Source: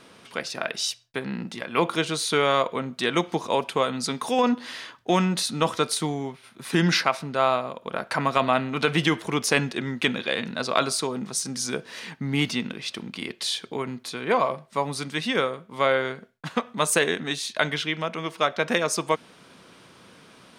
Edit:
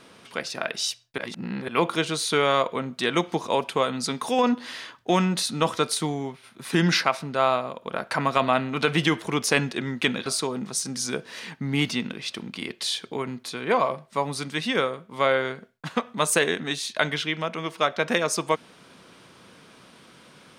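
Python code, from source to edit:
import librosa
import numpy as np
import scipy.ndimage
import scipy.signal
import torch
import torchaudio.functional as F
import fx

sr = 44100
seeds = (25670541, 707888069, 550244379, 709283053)

y = fx.edit(x, sr, fx.reverse_span(start_s=1.18, length_s=0.5),
    fx.cut(start_s=10.26, length_s=0.6), tone=tone)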